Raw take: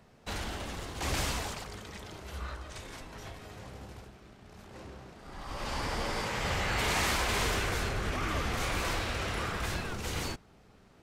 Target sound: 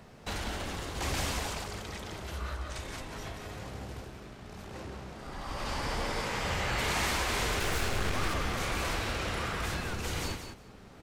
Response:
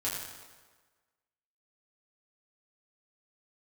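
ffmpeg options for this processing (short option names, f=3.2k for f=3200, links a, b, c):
-filter_complex "[0:a]acompressor=threshold=-51dB:ratio=1.5,asettb=1/sr,asplit=3[a][b][c];[a]atrim=end=7.604[d];[b]atrim=start=7.6:end=8.34,asetpts=PTS-STARTPTS,afade=t=in:d=0.004:c=qsin,afade=t=out:st=0.736:d=0.004:c=qsin,aeval=exprs='0.0316*(cos(1*acos(clip(val(0)/0.0316,-1,1)))-cos(1*PI/2))+0.00631*(cos(8*acos(clip(val(0)/0.0316,-1,1)))-cos(8*PI/2))':c=same[e];[c]atrim=start=8.336[f];[d][e]acrossfade=d=0.004:c1=hsin:c2=qsin[g];[g][f]acrossfade=d=0.004:c1=qsin:c2=hsin,aecho=1:1:183|366:0.398|0.0597,volume=7dB"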